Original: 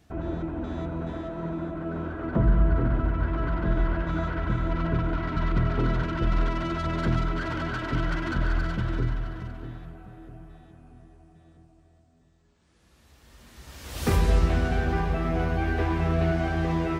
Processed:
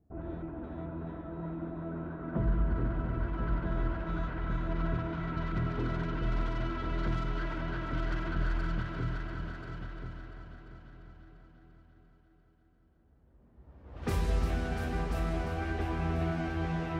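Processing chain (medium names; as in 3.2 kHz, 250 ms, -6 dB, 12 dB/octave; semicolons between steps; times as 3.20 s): level-controlled noise filter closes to 540 Hz, open at -20 dBFS; multi-head delay 345 ms, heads all three, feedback 41%, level -9.5 dB; trim -8.5 dB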